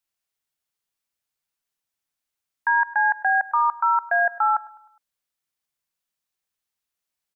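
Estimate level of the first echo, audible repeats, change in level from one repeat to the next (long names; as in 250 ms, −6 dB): −20.0 dB, 3, −6.5 dB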